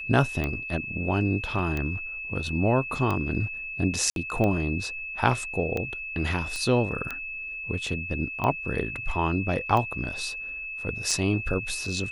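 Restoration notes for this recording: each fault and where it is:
scratch tick 45 rpm −16 dBFS
whistle 2,600 Hz −33 dBFS
0:01.59: drop-out 2.6 ms
0:04.10–0:04.16: drop-out 62 ms
0:06.56: click −19 dBFS

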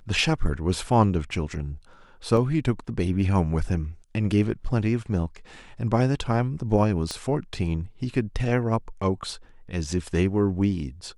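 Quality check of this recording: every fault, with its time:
0:02.37: drop-out 2.4 ms
0:07.11: click −16 dBFS

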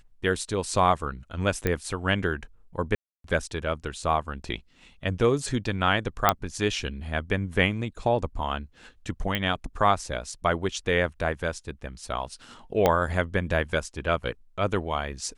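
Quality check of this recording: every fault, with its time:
0:01.67: click −11 dBFS
0:02.95–0:03.24: drop-out 293 ms
0:06.29: click −3 dBFS
0:09.35: click −13 dBFS
0:12.86: click −7 dBFS

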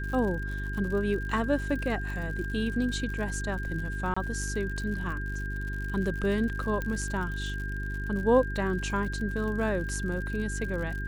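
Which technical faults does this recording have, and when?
surface crackle 81 per second −36 dBFS
mains hum 50 Hz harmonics 8 −34 dBFS
whistle 1,600 Hz −37 dBFS
0:04.14–0:04.17: drop-out 25 ms
0:06.82: click −19 dBFS

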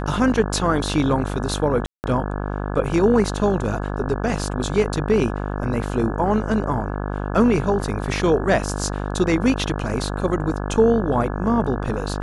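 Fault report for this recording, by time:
mains buzz 50 Hz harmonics 34 −26 dBFS
0:01.86–0:02.04: drop-out 179 ms

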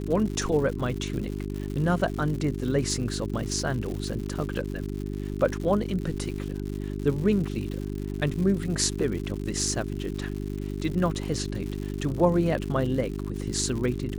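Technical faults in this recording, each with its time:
surface crackle 160 per second −33 dBFS
mains hum 50 Hz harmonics 8 −32 dBFS

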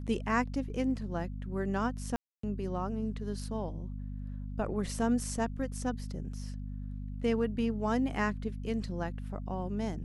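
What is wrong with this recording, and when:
mains hum 50 Hz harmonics 5 −39 dBFS
0:02.16–0:02.43: drop-out 274 ms

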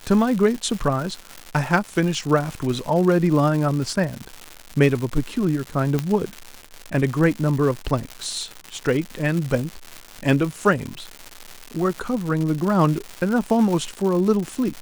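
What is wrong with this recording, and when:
surface crackle 270 per second −26 dBFS
0:05.99: click −9 dBFS

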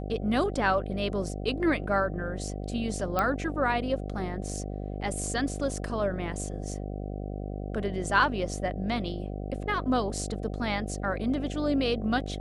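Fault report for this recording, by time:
mains buzz 50 Hz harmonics 15 −35 dBFS
0:03.19: click −13 dBFS

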